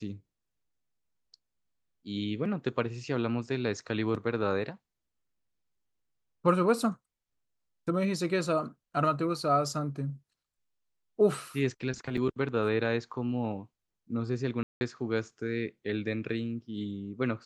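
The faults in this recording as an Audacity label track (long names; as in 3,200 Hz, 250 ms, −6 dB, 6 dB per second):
12.170000	12.170000	drop-out 4.5 ms
14.630000	14.810000	drop-out 180 ms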